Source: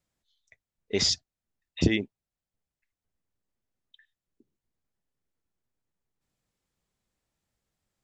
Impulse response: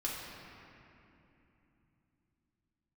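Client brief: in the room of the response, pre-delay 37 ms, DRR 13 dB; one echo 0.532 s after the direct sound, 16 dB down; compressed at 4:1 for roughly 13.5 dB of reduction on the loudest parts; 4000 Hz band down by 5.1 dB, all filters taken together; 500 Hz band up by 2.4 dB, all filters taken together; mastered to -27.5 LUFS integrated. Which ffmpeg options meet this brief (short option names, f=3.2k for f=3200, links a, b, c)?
-filter_complex "[0:a]equalizer=f=500:t=o:g=3.5,equalizer=f=4k:t=o:g=-7,acompressor=threshold=-33dB:ratio=4,aecho=1:1:532:0.158,asplit=2[a][b];[1:a]atrim=start_sample=2205,adelay=37[c];[b][c]afir=irnorm=-1:irlink=0,volume=-16.5dB[d];[a][d]amix=inputs=2:normalize=0,volume=13dB"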